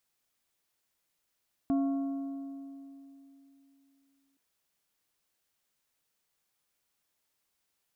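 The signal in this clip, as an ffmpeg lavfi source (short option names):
-f lavfi -i "aevalsrc='0.0631*pow(10,-3*t/3.22)*sin(2*PI*275*t)+0.0178*pow(10,-3*t/2.446)*sin(2*PI*687.5*t)+0.00501*pow(10,-3*t/2.124)*sin(2*PI*1100*t)+0.00141*pow(10,-3*t/1.987)*sin(2*PI*1375*t)':d=2.67:s=44100"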